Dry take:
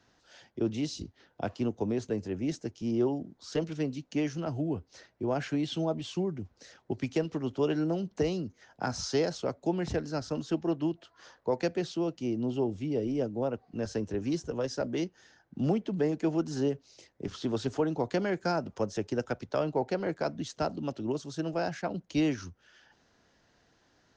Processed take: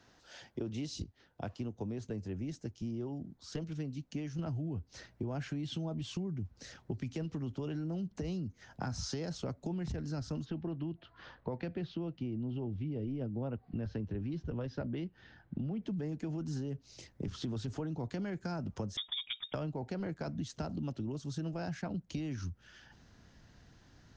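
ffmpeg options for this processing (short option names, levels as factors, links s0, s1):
-filter_complex "[0:a]asplit=3[s0][s1][s2];[s0]afade=t=out:st=10.44:d=0.02[s3];[s1]lowpass=f=3800:w=0.5412,lowpass=f=3800:w=1.3066,afade=t=in:st=10.44:d=0.02,afade=t=out:st=15.81:d=0.02[s4];[s2]afade=t=in:st=15.81:d=0.02[s5];[s3][s4][s5]amix=inputs=3:normalize=0,asettb=1/sr,asplit=3[s6][s7][s8];[s6]atrim=end=18.974[s9];[s7]atrim=start=18.97:end=19.54,asetpts=PTS-STARTPTS,afade=t=in:d=0.004:c=qsin,afade=t=out:st=0.566:d=0.004:c=qsin,lowpass=f=3200:t=q:w=0.5098,lowpass=f=3200:t=q:w=0.6013,lowpass=f=3200:t=q:w=0.9,lowpass=f=3200:t=q:w=2.563,afreqshift=-3800[s10];[s8]atrim=start=19.536[s11];[s9][s10]acrossfade=d=0.004:c1=hsin:c2=qsin[s12];[s12][s11]acrossfade=d=0.004:c1=qsin:c2=hsin,asplit=3[s13][s14][s15];[s13]atrim=end=1.042[s16];[s14]atrim=start=1.038:end=4.392,asetpts=PTS-STARTPTS,volume=0.447[s17];[s15]atrim=start=4.388[s18];[s16][s17]acrossfade=d=0.004:c1=hsin:c2=hsin[s19];[s19][s18]acrossfade=d=0.004:c1=hsin:c2=hsin,asubboost=boost=4:cutoff=210,alimiter=limit=0.075:level=0:latency=1:release=12,acompressor=threshold=0.0126:ratio=6,volume=1.33"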